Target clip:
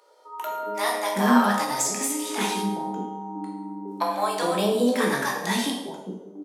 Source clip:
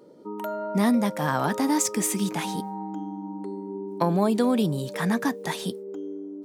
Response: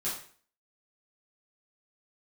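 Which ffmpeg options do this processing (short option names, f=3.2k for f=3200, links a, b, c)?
-filter_complex "[0:a]acrossover=split=640[a][b];[a]adelay=410[c];[c][b]amix=inputs=2:normalize=0,asplit=2[d][e];[1:a]atrim=start_sample=2205,asetrate=26019,aresample=44100[f];[e][f]afir=irnorm=-1:irlink=0,volume=-5dB[g];[d][g]amix=inputs=2:normalize=0,asplit=3[h][i][j];[h]afade=t=out:st=1.63:d=0.02[k];[i]acompressor=threshold=-20dB:ratio=10,afade=t=in:st=1.63:d=0.02,afade=t=out:st=2.39:d=0.02[l];[j]afade=t=in:st=2.39:d=0.02[m];[k][l][m]amix=inputs=3:normalize=0,highpass=400,asplit=2[n][o];[o]adelay=16,volume=-12dB[p];[n][p]amix=inputs=2:normalize=0"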